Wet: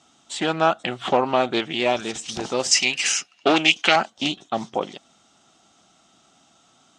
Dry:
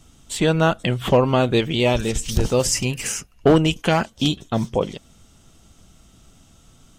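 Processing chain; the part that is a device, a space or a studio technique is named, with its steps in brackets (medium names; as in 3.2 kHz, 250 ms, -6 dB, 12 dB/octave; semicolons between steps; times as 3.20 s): full-range speaker at full volume (loudspeaker Doppler distortion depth 0.33 ms; cabinet simulation 290–7900 Hz, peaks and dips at 470 Hz -6 dB, 760 Hz +8 dB, 1.3 kHz +4 dB, 3.8 kHz +3 dB); 2.71–3.96 s: frequency weighting D; trim -2 dB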